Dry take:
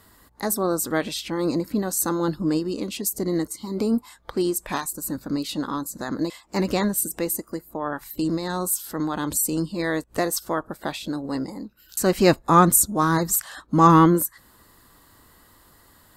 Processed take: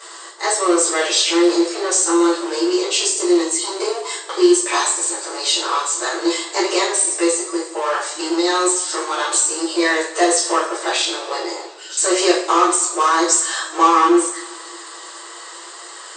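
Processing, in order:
power curve on the samples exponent 0.7
spectral tilt +2 dB per octave
downward compressor, threshold −16 dBFS, peak gain reduction 11 dB
brick-wall band-pass 320–8,700 Hz
coupled-rooms reverb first 0.47 s, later 2.2 s, from −19 dB, DRR −8.5 dB
level −4 dB

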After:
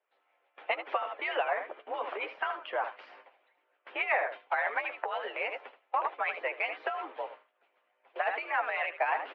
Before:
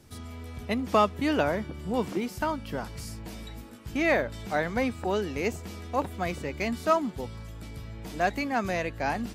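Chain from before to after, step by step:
noise gate with hold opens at −29 dBFS
on a send: ambience of single reflections 11 ms −8.5 dB, 78 ms −10.5 dB
on the sum: brickwall limiter −21 dBFS, peak gain reduction 11 dB
single-sideband voice off tune +65 Hz 490–2,800 Hz
harmonic and percussive parts rebalanced harmonic −16 dB
level +8.5 dB

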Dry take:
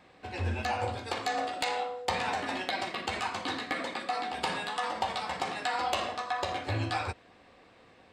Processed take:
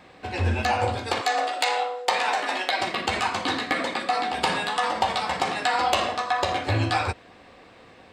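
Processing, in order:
0:01.21–0:02.81: high-pass filter 450 Hz 12 dB per octave
level +8 dB

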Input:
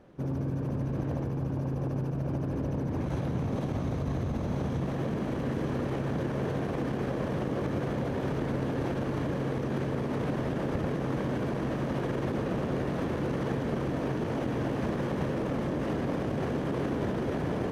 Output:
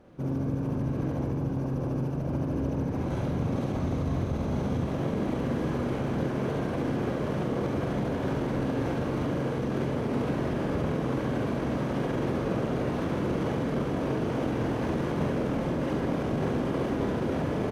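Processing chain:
notch filter 1,800 Hz, Q 19
on a send: ambience of single reflections 45 ms −5 dB, 70 ms −5 dB

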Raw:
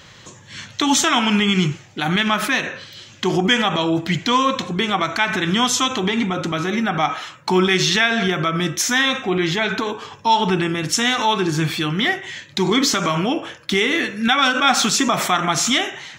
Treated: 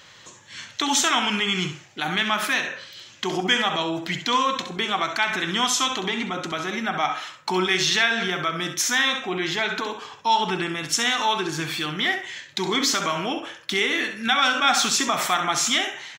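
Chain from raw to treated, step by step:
low-shelf EQ 320 Hz −11 dB
repeating echo 66 ms, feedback 16%, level −10 dB
level −3 dB

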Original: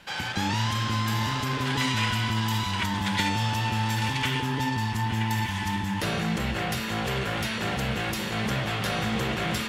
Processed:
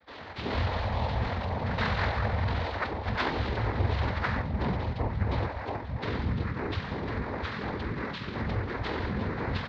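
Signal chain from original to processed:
noise reduction from a noise print of the clip's start 10 dB
cochlear-implant simulation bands 6
pitch shifter −11 semitones

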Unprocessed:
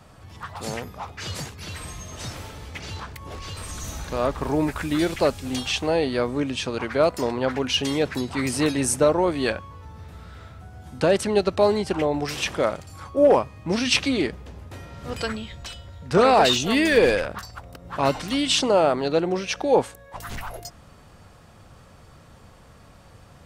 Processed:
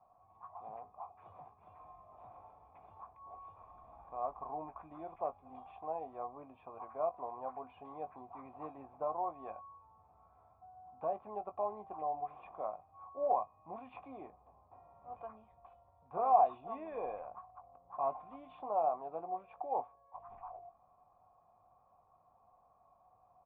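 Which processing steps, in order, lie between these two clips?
formant resonators in series a
double-tracking delay 19 ms −10.5 dB
level −4 dB

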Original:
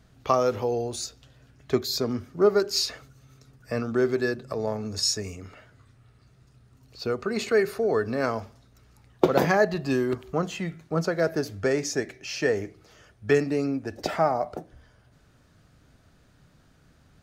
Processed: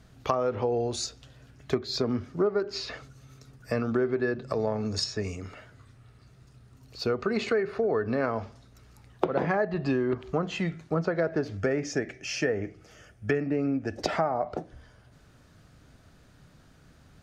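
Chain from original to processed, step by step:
treble cut that deepens with the level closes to 2,300 Hz, closed at −21.5 dBFS
0:11.57–0:13.98: thirty-one-band graphic EQ 400 Hz −3 dB, 1,000 Hz −9 dB, 4,000 Hz −10 dB
downward compressor 6 to 1, threshold −25 dBFS, peak gain reduction 11.5 dB
level +2.5 dB

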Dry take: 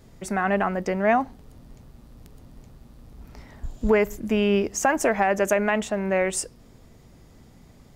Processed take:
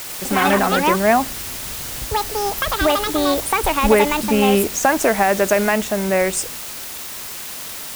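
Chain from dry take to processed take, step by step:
noise gate with hold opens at −38 dBFS
bit-depth reduction 6 bits, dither triangular
delay with pitch and tempo change per echo 98 ms, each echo +6 semitones, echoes 2
level +5 dB

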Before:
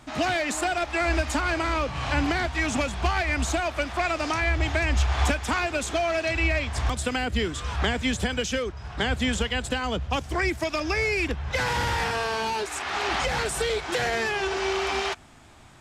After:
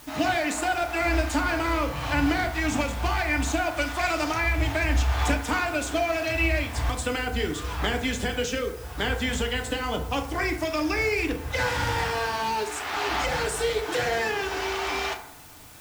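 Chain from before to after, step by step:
0:03.77–0:04.24: high-shelf EQ 4,300 Hz +8.5 dB
in parallel at −10 dB: bit-depth reduction 6 bits, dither triangular
on the sum: feedback delay network reverb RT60 0.72 s, low-frequency decay 0.75×, high-frequency decay 0.45×, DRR 3 dB
level −4.5 dB

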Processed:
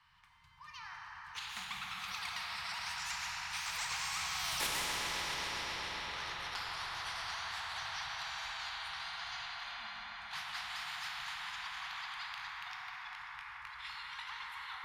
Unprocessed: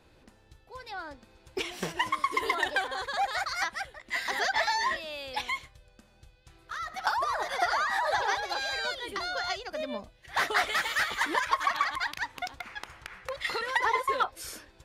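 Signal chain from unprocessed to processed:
pitch glide at a constant tempo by +3 semitones starting unshifted
source passing by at 0:04.59, 49 m/s, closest 2.9 metres
in parallel at −0.5 dB: downward compressor, threshold −58 dBFS, peak gain reduction 24 dB
on the sum: elliptic band-stop filter 160–980 Hz, stop band 40 dB
mains-hum notches 50/100/150/200 Hz
echo whose low-pass opens from repeat to repeat 135 ms, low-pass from 750 Hz, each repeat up 1 octave, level −6 dB
asymmetric clip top −35.5 dBFS
three-way crossover with the lows and the highs turned down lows −14 dB, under 250 Hz, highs −15 dB, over 3,600 Hz
dense smooth reverb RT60 5 s, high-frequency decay 0.55×, DRR −0.5 dB
every bin compressed towards the loudest bin 4 to 1
level +6 dB

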